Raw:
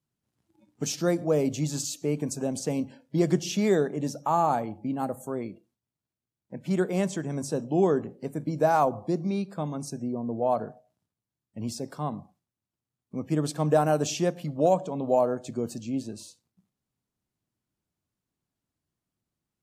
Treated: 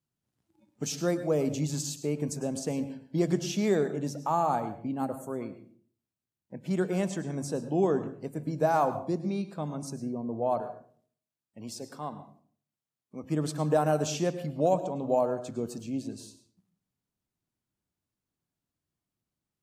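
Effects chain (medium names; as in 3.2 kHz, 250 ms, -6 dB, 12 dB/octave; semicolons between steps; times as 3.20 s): 10.61–13.24 s: bass shelf 230 Hz -11.5 dB; reverberation RT60 0.50 s, pre-delay 98 ms, DRR 11.5 dB; trim -3 dB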